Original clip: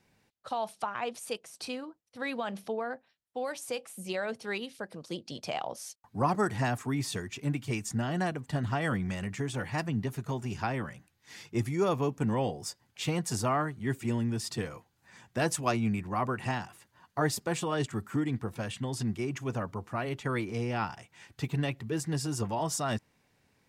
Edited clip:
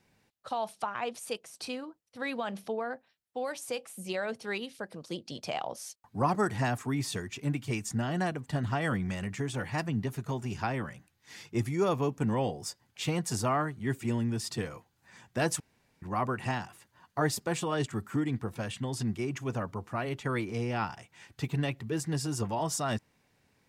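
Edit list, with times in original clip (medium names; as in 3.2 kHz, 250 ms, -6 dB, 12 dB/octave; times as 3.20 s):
15.60–16.02 s: room tone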